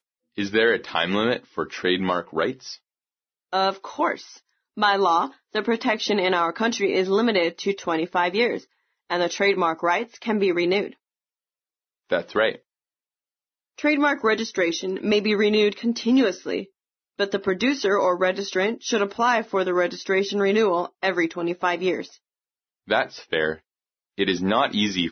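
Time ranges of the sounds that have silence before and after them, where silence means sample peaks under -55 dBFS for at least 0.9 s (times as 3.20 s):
12.10–12.61 s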